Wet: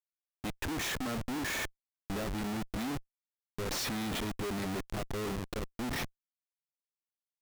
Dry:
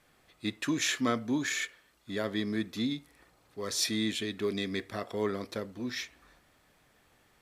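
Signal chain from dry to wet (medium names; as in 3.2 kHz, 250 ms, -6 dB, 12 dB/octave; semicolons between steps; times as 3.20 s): Schmitt trigger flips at -35.5 dBFS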